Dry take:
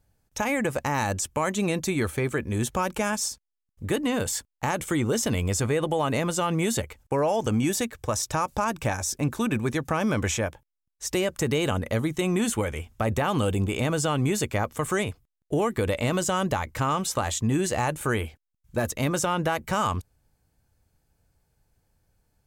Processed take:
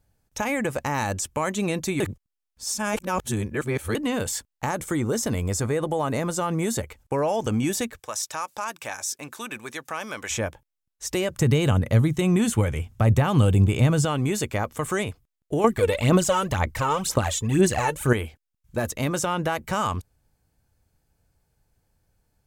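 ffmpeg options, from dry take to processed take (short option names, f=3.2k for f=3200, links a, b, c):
-filter_complex "[0:a]asettb=1/sr,asplit=3[a][b][c];[a]atrim=end=4.664[d];[b]atrim=start=4.66:end=6.83,asetpts=PTS-STARTPTS,afade=t=in:d=0.004:c=qsin,afade=t=out:st=2.166:d=0.004:c=qsin,equalizer=f=2.9k:t=o:w=0.77:g=-7[e];[c]atrim=start=6.826[f];[d][e]acrossfade=d=0.004:c1=hsin:c2=qsin[g];[g][f]acrossfade=d=0.004:c1=qsin:c2=hsin,asplit=3[h][i][j];[h]afade=t=out:st=7.98:d=0.02[k];[i]highpass=f=1.3k:p=1,afade=t=in:st=7.98:d=0.02,afade=t=out:st=10.3:d=0.02[l];[j]afade=t=in:st=10.3:d=0.02[m];[k][l][m]amix=inputs=3:normalize=0,asettb=1/sr,asplit=3[n][o][p];[n]atrim=end=11.304[q];[o]atrim=start=11.3:end=14.05,asetpts=PTS-STARTPTS,afade=t=in:d=0.004:c=qsin,afade=t=out:st=2.746:d=0.004:c=qsin,equalizer=f=120:w=1.1:g=11.5[r];[p]atrim=start=14.046[s];[q][r]acrossfade=d=0.004:c1=hsin:c2=qsin[t];[t][s]acrossfade=d=0.004:c1=qsin:c2=hsin,asettb=1/sr,asplit=3[u][v][w];[u]atrim=end=15.644[x];[v]atrim=start=15.64:end=18.13,asetpts=PTS-STARTPTS,afade=t=in:d=0.004:c=qsin,afade=t=out:st=2.486:d=0.004:c=qsin,aphaser=in_gain=1:out_gain=1:delay=2.3:decay=0.68:speed=2:type=sinusoidal[y];[w]atrim=start=18.126[z];[x][y]acrossfade=d=0.004:c1=hsin:c2=qsin[aa];[aa][z]acrossfade=d=0.004:c1=qsin:c2=hsin,asplit=3[ab][ac][ad];[ab]atrim=end=2.002[ae];[ac]atrim=start=1.998:end=3.952,asetpts=PTS-STARTPTS,areverse[af];[ad]atrim=start=3.948[ag];[ae][af]acrossfade=d=0.004:c1=hsin:c2=hsin[ah];[ah][ag]acrossfade=d=0.004:c1=hsin:c2=hsin"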